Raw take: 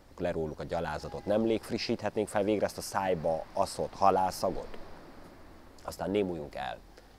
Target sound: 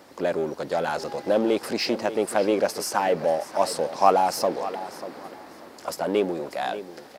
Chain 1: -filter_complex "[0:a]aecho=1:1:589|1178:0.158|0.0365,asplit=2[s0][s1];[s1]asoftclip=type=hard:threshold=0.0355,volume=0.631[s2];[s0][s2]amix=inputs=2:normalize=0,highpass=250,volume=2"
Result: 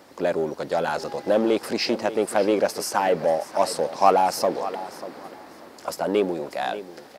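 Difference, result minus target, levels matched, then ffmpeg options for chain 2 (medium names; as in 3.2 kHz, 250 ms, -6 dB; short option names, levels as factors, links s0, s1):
hard clipper: distortion -4 dB
-filter_complex "[0:a]aecho=1:1:589|1178:0.158|0.0365,asplit=2[s0][s1];[s1]asoftclip=type=hard:threshold=0.015,volume=0.631[s2];[s0][s2]amix=inputs=2:normalize=0,highpass=250,volume=2"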